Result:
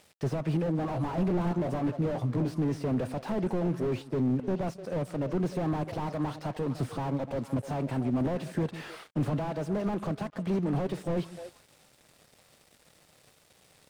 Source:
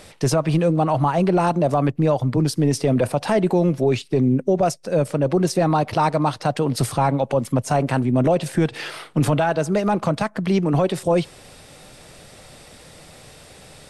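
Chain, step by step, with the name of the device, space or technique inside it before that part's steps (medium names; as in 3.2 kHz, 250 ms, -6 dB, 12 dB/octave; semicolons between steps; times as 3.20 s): high-pass 81 Hz 6 dB/octave; 0.77–2.54 s: doubling 17 ms -7 dB; repeats whose band climbs or falls 150 ms, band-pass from 200 Hz, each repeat 1.4 oct, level -11.5 dB; early transistor amplifier (crossover distortion -44.5 dBFS; slew-rate limiter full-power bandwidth 41 Hz); trim -7.5 dB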